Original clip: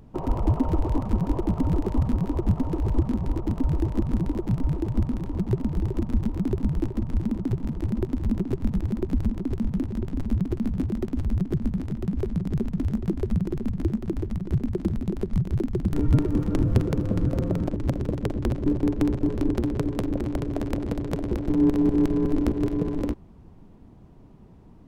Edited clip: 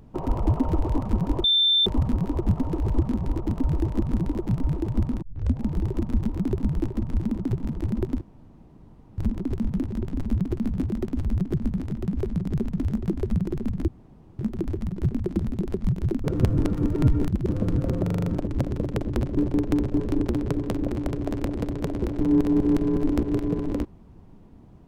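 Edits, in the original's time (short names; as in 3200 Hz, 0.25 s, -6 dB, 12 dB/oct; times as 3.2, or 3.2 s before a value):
1.44–1.86 bleep 3560 Hz -16.5 dBFS
5.22 tape start 0.45 s
8.21–9.18 room tone
13.88 insert room tone 0.51 s
15.73–16.97 reverse
17.53 stutter 0.04 s, 6 plays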